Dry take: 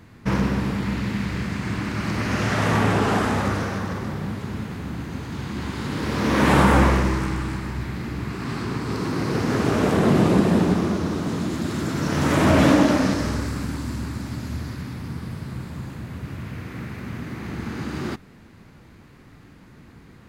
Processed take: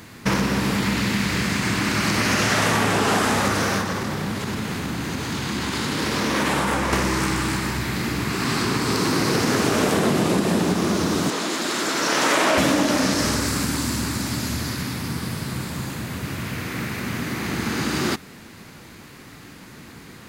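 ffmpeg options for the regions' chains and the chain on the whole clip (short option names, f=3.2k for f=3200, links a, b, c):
-filter_complex "[0:a]asettb=1/sr,asplit=3[a][b][c];[a]atrim=end=3.814[d];[b]atrim=start=3.81:end=6.93,asetpts=PTS-STARTPTS,afade=t=in:d=0.004:c=qsin,afade=t=out:st=3.116:d=0.004:c=qsin,highshelf=f=11k:g=-5,acompressor=threshold=-27dB:ratio=3:attack=3.2:release=140:knee=1:detection=peak[e];[c]atrim=start=6.926[f];[d][e]acrossfade=d=0.004:c1=hsin:c2=qsin[g];[g][f]acrossfade=d=0.004:c1=qsin:c2=hsin,asettb=1/sr,asplit=3[h][i][j];[h]atrim=end=11.304[k];[i]atrim=start=11.3:end=12.58,asetpts=PTS-STARTPTS,afade=t=in:d=0.004:c=qsin,afade=t=out:st=1.276:d=0.004:c=qsin,highpass=410,highshelf=f=8.4k:g=-10.5[l];[j]atrim=start=12.576[m];[k][l]acrossfade=d=0.004:c1=hsin:c2=qsin[n];[n][m]acrossfade=d=0.004:c1=qsin:c2=hsin,highshelf=f=3.2k:g=11,acompressor=threshold=-22dB:ratio=6,lowshelf=f=110:g=-11,volume=7dB"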